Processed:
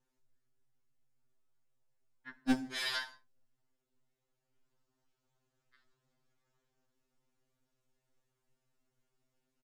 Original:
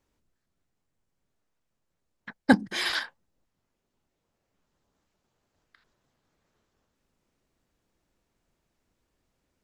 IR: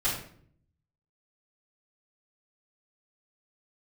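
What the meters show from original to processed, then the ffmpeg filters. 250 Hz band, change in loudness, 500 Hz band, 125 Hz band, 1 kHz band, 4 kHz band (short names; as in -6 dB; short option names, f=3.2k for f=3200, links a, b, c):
-9.5 dB, -9.5 dB, -15.5 dB, -15.0 dB, -12.5 dB, -7.0 dB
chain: -filter_complex "[0:a]aresample=32000,aresample=44100,volume=19dB,asoftclip=hard,volume=-19dB,asplit=2[a][b];[b]highshelf=f=4.9k:t=q:w=1.5:g=7[c];[1:a]atrim=start_sample=2205,atrim=end_sample=6174,asetrate=35280,aresample=44100[d];[c][d]afir=irnorm=-1:irlink=0,volume=-21.5dB[e];[a][e]amix=inputs=2:normalize=0,afftfilt=real='re*2.45*eq(mod(b,6),0)':imag='im*2.45*eq(mod(b,6),0)':win_size=2048:overlap=0.75,volume=-5.5dB"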